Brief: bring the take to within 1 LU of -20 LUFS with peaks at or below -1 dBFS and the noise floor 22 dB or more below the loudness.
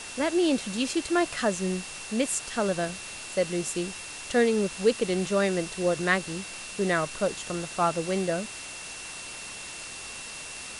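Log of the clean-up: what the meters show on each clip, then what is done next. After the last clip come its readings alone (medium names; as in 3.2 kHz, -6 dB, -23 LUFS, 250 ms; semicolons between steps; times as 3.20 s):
steady tone 2.7 kHz; tone level -43 dBFS; noise floor -40 dBFS; noise floor target -51 dBFS; loudness -28.5 LUFS; peak level -9.0 dBFS; loudness target -20.0 LUFS
-> band-stop 2.7 kHz, Q 30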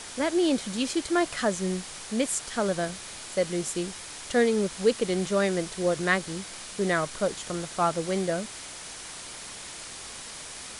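steady tone not found; noise floor -41 dBFS; noise floor target -51 dBFS
-> noise print and reduce 10 dB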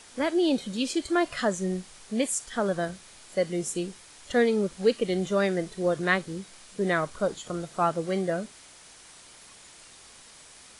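noise floor -51 dBFS; loudness -28.0 LUFS; peak level -9.5 dBFS; loudness target -20.0 LUFS
-> trim +8 dB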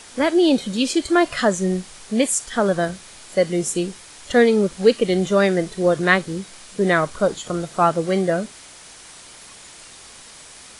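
loudness -20.0 LUFS; peak level -1.5 dBFS; noise floor -43 dBFS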